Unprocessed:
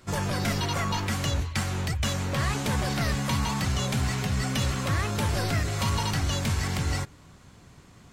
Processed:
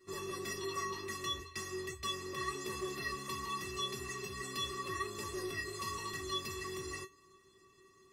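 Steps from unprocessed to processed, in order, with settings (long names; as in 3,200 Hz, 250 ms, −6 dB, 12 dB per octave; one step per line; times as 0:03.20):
tuned comb filter 380 Hz, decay 0.17 s, harmonics odd, mix 100%
level +6.5 dB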